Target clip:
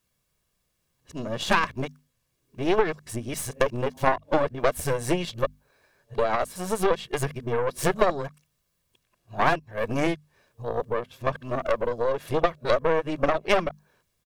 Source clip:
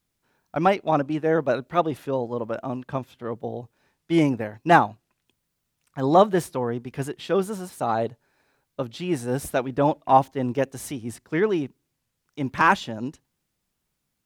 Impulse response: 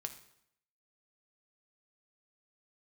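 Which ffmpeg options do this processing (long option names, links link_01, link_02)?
-af "areverse,aecho=1:1:1.8:0.46,acompressor=threshold=-24dB:ratio=8,aeval=exprs='0.224*(cos(1*acos(clip(val(0)/0.224,-1,1)))-cos(1*PI/2))+0.0562*(cos(4*acos(clip(val(0)/0.224,-1,1)))-cos(4*PI/2))+0.0112*(cos(7*acos(clip(val(0)/0.224,-1,1)))-cos(7*PI/2))':channel_layout=same,bandreject=frequency=50:width_type=h:width=6,bandreject=frequency=100:width_type=h:width=6,bandreject=frequency=150:width_type=h:width=6,bandreject=frequency=200:width_type=h:width=6,bandreject=frequency=250:width_type=h:width=6,volume=6dB"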